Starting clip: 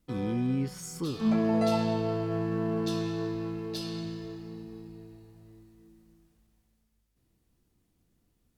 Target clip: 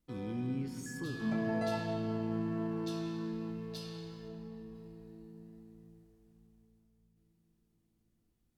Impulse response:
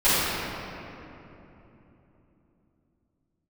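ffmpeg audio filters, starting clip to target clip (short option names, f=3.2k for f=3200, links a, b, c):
-filter_complex "[0:a]asettb=1/sr,asplit=3[a][b][c];[a]atrim=end=0.864[d];[b]atrim=start=0.86:end=1.86,asetpts=PTS-STARTPTS,afade=t=in:d=0.004:c=qsin,afade=t=out:st=0.996:d=0.004:c=qsin,aeval=exprs='val(0)+0.0112*sin(2*PI*1700*n/s)':c=same[e];[c]atrim=start=1.856[f];[d][e]acrossfade=d=0.004:c1=hsin:c2=qsin[g];[g][f]acrossfade=d=0.004:c1=qsin:c2=hsin,asettb=1/sr,asplit=3[h][i][j];[h]atrim=end=4.284[k];[i]atrim=start=4.28:end=4.75,asetpts=PTS-STARTPTS,afade=t=in:d=0.004:c=qsin,afade=t=out:st=0.466:d=0.004:c=qsin,tiltshelf=f=970:g=3[l];[j]atrim=start=4.746[m];[k][l]acrossfade=d=0.004:c1=hsin:c2=qsin[n];[n][m]acrossfade=d=0.004:c1=qsin:c2=hsin,asplit=2[o][p];[1:a]atrim=start_sample=2205,asetrate=29106,aresample=44100[q];[p][q]afir=irnorm=-1:irlink=0,volume=-30dB[r];[o][r]amix=inputs=2:normalize=0,volume=-8.5dB"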